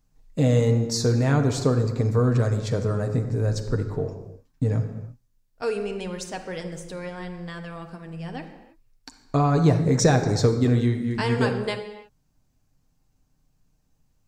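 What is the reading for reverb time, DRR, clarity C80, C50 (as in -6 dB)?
not exponential, 3.5 dB, 10.0 dB, 8.5 dB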